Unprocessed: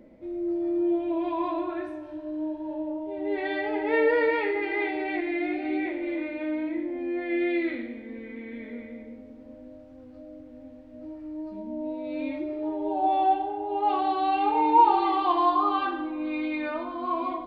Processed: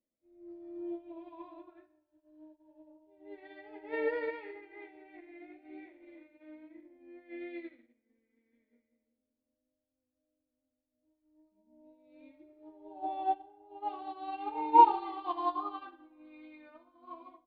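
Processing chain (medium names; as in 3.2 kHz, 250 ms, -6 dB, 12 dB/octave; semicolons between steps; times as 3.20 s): 4.61–5.78 s: distance through air 180 m; upward expansion 2.5:1, over -41 dBFS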